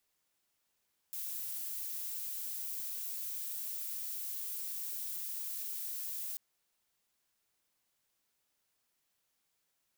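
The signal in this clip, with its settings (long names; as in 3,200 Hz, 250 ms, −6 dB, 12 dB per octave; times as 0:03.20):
noise violet, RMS −40 dBFS 5.24 s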